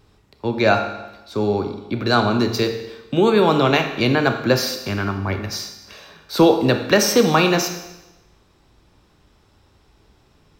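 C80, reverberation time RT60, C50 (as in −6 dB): 10.0 dB, 1.0 s, 8.5 dB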